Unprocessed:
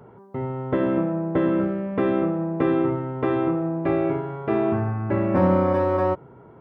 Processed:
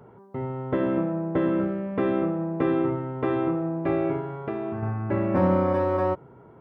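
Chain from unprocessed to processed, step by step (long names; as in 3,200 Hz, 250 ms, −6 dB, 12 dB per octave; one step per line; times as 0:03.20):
0:04.36–0:04.83: downward compressor 5 to 1, threshold −25 dBFS, peak gain reduction 7 dB
level −2.5 dB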